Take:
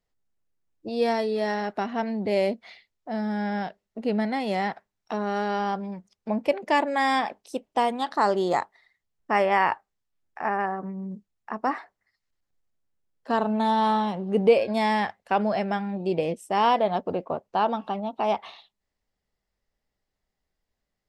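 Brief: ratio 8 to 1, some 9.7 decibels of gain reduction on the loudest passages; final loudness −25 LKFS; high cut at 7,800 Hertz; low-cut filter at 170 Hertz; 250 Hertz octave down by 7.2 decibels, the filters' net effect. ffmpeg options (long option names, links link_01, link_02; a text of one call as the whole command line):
ffmpeg -i in.wav -af "highpass=170,lowpass=7800,equalizer=frequency=250:width_type=o:gain=-7.5,acompressor=threshold=-24dB:ratio=8,volume=6dB" out.wav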